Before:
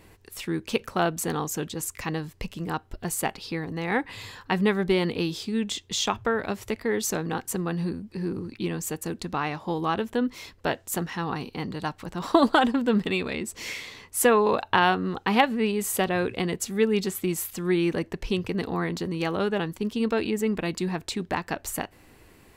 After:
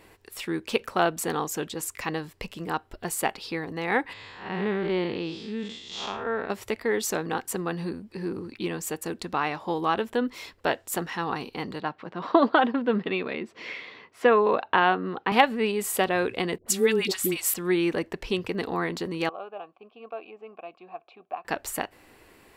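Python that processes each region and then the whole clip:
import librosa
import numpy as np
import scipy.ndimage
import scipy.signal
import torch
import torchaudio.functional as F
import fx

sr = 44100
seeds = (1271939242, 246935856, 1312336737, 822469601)

y = fx.chain(x, sr, fx.spec_blur(span_ms=158.0),
    fx.air_absorb(metres=120.0), at=(4.13, 6.5))
y = fx.chain(y, sr, fx.highpass(hz=120.0, slope=24),
    fx.air_absorb(metres=260.0),
    fx.notch(hz=860.0, q=17.0), at=(11.8, 15.32))
y = fx.chain(y, sr, fx.high_shelf(hz=2500.0, db=7.5),
    fx.dispersion(late='highs', ms=84.0, hz=700.0), at=(16.58, 17.54))
y = fx.chain(y, sr, fx.vowel_filter(vowel='a'),
    fx.air_absorb(metres=210.0), at=(19.29, 21.45))
y = fx.bass_treble(y, sr, bass_db=-9, treble_db=-3)
y = fx.notch(y, sr, hz=6300.0, q=18.0)
y = y * librosa.db_to_amplitude(2.0)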